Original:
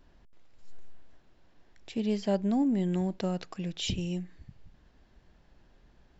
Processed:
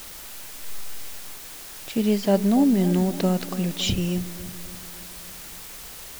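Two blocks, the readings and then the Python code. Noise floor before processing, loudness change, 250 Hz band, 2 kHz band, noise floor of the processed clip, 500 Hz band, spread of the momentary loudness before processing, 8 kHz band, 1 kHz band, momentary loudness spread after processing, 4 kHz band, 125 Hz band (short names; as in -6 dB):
-63 dBFS, +8.0 dB, +8.5 dB, +10.5 dB, -40 dBFS, +8.5 dB, 11 LU, n/a, +8.5 dB, 18 LU, +9.0 dB, +8.5 dB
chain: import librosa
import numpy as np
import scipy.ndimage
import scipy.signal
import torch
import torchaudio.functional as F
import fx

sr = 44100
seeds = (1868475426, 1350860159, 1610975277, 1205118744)

y = fx.vibrato(x, sr, rate_hz=0.35, depth_cents=6.2)
y = fx.quant_dither(y, sr, seeds[0], bits=8, dither='triangular')
y = fx.echo_bbd(y, sr, ms=282, stages=2048, feedback_pct=57, wet_db=-14)
y = y * librosa.db_to_amplitude(8.0)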